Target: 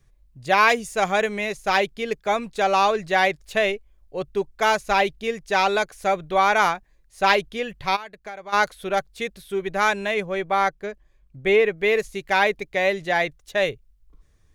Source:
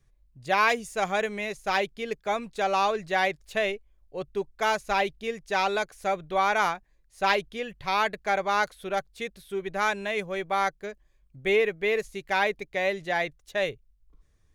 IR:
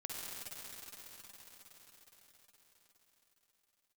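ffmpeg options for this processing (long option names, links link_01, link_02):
-filter_complex "[0:a]asplit=3[link_01][link_02][link_03];[link_01]afade=type=out:start_time=7.95:duration=0.02[link_04];[link_02]acompressor=threshold=-41dB:ratio=5,afade=type=in:start_time=7.95:duration=0.02,afade=type=out:start_time=8.52:duration=0.02[link_05];[link_03]afade=type=in:start_time=8.52:duration=0.02[link_06];[link_04][link_05][link_06]amix=inputs=3:normalize=0,asettb=1/sr,asplit=3[link_07][link_08][link_09];[link_07]atrim=end=10.144[link_10];[link_08]atrim=start=10.14:end=11.78,asetpts=PTS-STARTPTS,afade=type=in:duration=0.004:curve=qsin,afade=type=out:start_time=1.636:duration=0.004:curve=qsin,highshelf=frequency=4100:gain=-7[link_11];[link_09]atrim=start=11.776[link_12];[link_10][link_11]acrossfade=duration=0.004:curve1=hsin:curve2=qsin[link_13];[link_13][link_12]acrossfade=duration=0.004:curve1=qsin:curve2=hsin,volume=5.5dB"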